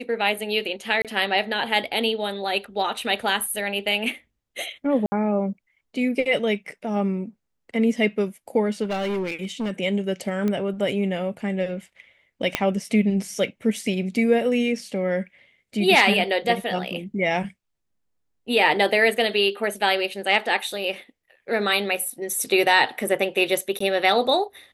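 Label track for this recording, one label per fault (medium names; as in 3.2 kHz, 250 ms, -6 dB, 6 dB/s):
1.020000	1.050000	dropout 27 ms
5.060000	5.120000	dropout 60 ms
8.830000	9.710000	clipped -22.5 dBFS
10.480000	10.480000	pop -14 dBFS
12.550000	12.550000	pop -5 dBFS
23.790000	23.800000	dropout 14 ms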